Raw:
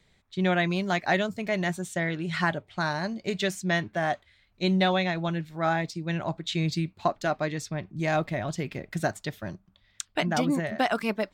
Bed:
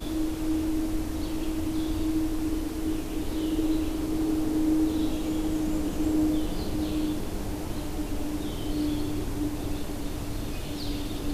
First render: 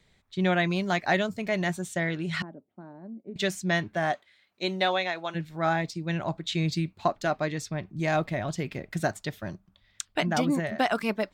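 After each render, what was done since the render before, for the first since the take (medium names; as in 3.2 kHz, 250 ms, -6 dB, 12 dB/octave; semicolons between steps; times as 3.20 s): 2.42–3.36 s: ladder band-pass 290 Hz, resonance 50%; 4.11–5.34 s: high-pass 220 Hz -> 530 Hz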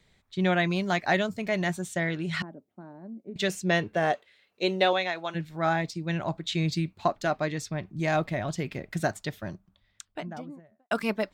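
3.49–4.93 s: small resonant body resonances 460/2700 Hz, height 12 dB, ringing for 30 ms; 9.26–10.91 s: studio fade out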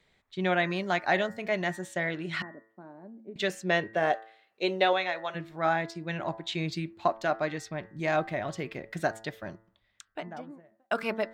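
tone controls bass -8 dB, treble -7 dB; de-hum 111.3 Hz, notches 18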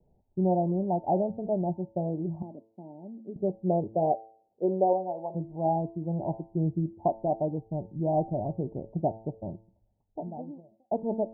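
steep low-pass 900 Hz 96 dB/octave; bass shelf 240 Hz +9 dB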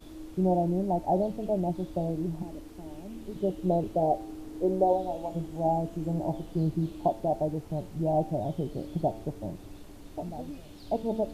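add bed -15 dB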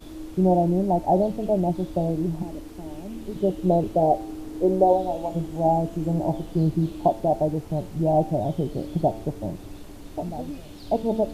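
trim +6 dB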